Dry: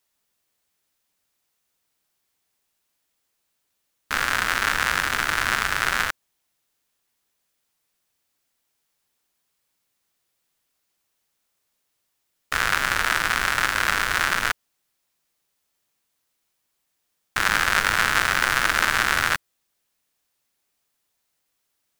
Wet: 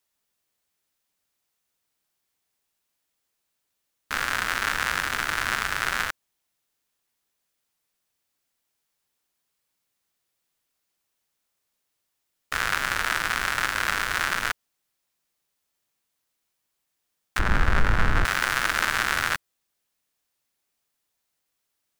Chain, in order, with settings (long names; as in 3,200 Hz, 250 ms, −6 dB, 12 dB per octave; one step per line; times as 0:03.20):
0:17.39–0:18.25: spectral tilt −4.5 dB per octave
level −3.5 dB